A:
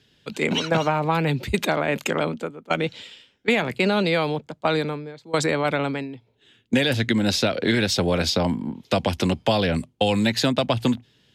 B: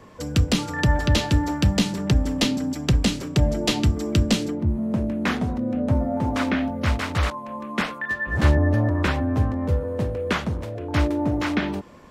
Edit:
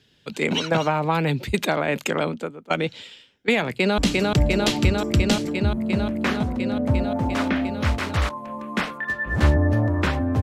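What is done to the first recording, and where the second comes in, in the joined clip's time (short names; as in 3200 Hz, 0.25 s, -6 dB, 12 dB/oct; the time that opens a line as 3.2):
A
3.7–3.98 echo throw 0.35 s, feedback 85%, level -1.5 dB
3.98 switch to B from 2.99 s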